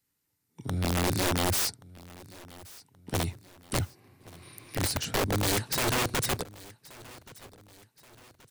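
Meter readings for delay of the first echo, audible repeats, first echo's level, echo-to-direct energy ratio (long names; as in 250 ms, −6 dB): 1,127 ms, 3, −21.0 dB, −20.0 dB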